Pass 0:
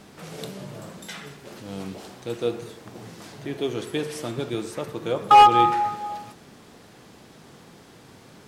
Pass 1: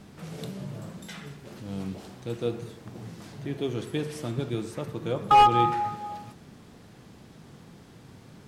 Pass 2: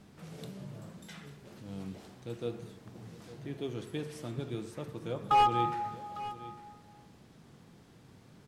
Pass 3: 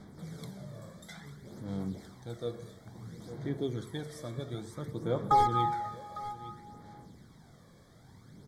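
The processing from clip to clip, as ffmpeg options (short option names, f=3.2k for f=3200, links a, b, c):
-af "bass=f=250:g=9,treble=f=4k:g=-1,volume=-5dB"
-af "aecho=1:1:854:0.158,volume=-7.5dB"
-af "aphaser=in_gain=1:out_gain=1:delay=1.8:decay=0.49:speed=0.58:type=sinusoidal,asuperstop=centerf=2700:order=12:qfactor=3"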